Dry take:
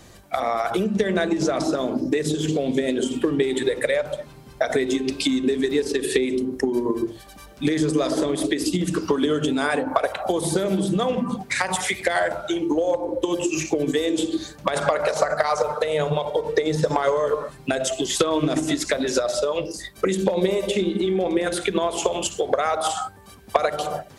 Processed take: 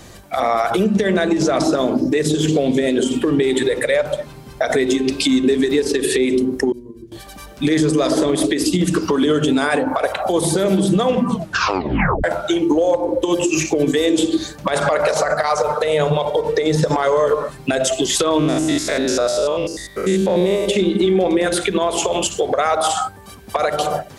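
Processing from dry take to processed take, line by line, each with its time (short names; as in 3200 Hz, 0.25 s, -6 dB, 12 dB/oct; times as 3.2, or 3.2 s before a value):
6.72–7.12 passive tone stack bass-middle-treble 10-0-1
11.29 tape stop 0.95 s
18.39–20.68 stepped spectrum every 0.1 s
whole clip: limiter -14.5 dBFS; gain +7 dB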